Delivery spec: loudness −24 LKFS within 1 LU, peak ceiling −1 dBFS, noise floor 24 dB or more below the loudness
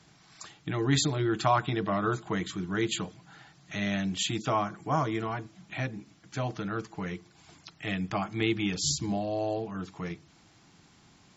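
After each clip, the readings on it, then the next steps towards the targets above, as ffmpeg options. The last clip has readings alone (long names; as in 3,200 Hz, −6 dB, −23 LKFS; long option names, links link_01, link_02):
integrated loudness −31.0 LKFS; sample peak −10.5 dBFS; target loudness −24.0 LKFS
→ -af "volume=7dB"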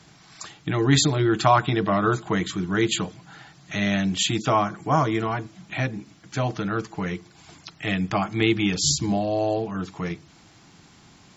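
integrated loudness −24.0 LKFS; sample peak −3.5 dBFS; background noise floor −53 dBFS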